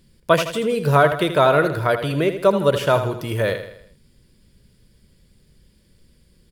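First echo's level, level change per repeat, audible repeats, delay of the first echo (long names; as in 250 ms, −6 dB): −10.0 dB, −6.5 dB, 4, 80 ms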